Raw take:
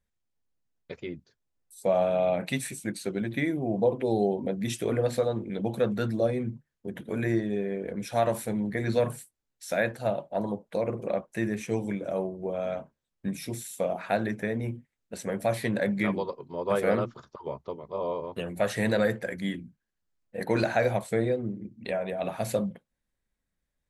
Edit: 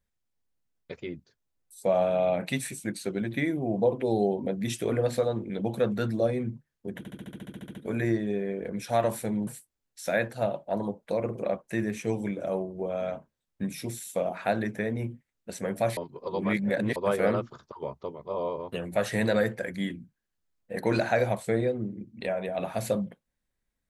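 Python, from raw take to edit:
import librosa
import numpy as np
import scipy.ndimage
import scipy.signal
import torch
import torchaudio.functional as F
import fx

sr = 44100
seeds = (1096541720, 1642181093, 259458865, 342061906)

y = fx.edit(x, sr, fx.stutter(start_s=6.98, slice_s=0.07, count=12),
    fx.cut(start_s=8.7, length_s=0.41),
    fx.reverse_span(start_s=15.61, length_s=0.99), tone=tone)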